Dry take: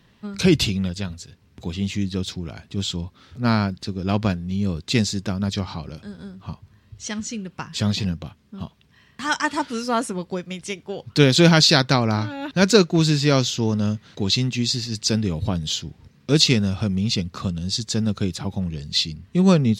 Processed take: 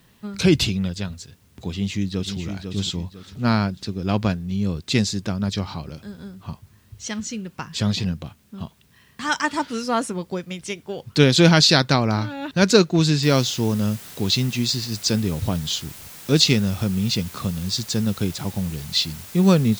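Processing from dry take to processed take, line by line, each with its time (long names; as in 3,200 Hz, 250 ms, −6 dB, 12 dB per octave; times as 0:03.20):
0:01.69–0:02.39: delay throw 500 ms, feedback 35%, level −7 dB
0:13.23: noise floor change −64 dB −41 dB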